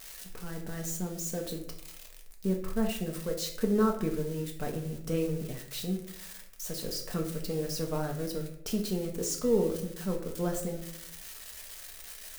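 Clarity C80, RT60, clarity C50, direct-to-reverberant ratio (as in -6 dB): 11.5 dB, 0.70 s, 8.0 dB, 1.0 dB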